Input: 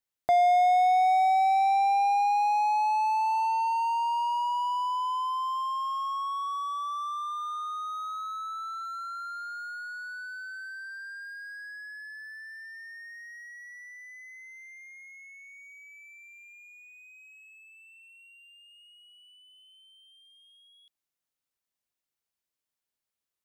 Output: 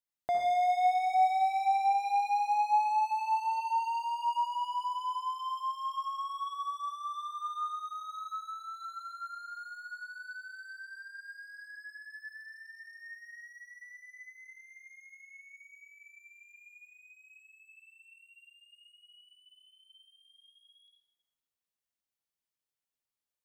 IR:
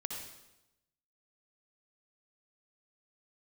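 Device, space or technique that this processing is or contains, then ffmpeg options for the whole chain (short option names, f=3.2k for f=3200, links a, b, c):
bathroom: -filter_complex "[1:a]atrim=start_sample=2205[a];[0:a][a]afir=irnorm=-1:irlink=0,volume=-5dB"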